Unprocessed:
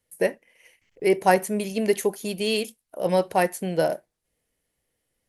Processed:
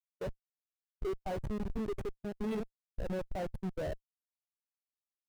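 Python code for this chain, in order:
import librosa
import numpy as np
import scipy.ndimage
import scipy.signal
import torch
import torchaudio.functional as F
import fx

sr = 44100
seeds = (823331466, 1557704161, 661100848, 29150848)

y = fx.schmitt(x, sr, flips_db=-24.5)
y = fx.spectral_expand(y, sr, expansion=1.5)
y = y * 10.0 ** (-8.5 / 20.0)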